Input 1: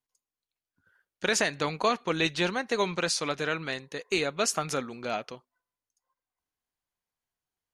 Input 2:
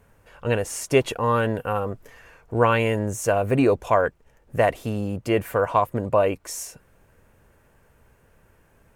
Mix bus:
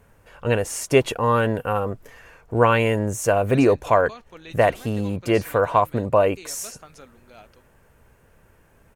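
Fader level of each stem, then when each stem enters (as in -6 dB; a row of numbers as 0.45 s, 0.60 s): -15.5 dB, +2.0 dB; 2.25 s, 0.00 s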